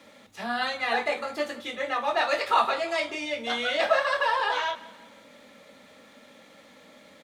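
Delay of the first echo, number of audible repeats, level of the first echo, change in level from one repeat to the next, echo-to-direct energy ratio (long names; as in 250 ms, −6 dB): 175 ms, 3, −19.0 dB, −7.0 dB, −18.0 dB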